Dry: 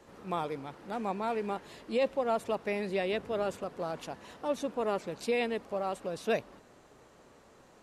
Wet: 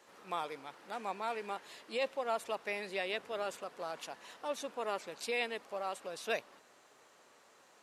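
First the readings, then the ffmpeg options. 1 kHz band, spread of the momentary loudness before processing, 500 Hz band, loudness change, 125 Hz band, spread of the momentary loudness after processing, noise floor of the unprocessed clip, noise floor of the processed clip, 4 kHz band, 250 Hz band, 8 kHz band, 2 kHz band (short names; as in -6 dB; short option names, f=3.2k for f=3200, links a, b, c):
-3.5 dB, 7 LU, -7.0 dB, -5.0 dB, -15.5 dB, 8 LU, -59 dBFS, -64 dBFS, +0.5 dB, -13.0 dB, +1.0 dB, -0.5 dB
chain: -af "highpass=f=1.2k:p=1,volume=1dB"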